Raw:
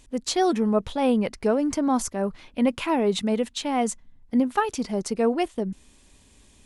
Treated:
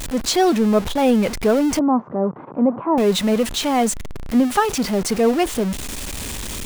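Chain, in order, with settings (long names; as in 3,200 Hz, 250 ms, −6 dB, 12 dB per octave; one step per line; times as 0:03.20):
converter with a step at zero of −27 dBFS
0:01.79–0:02.98: elliptic band-pass filter 130–1,100 Hz, stop band 80 dB
level +4 dB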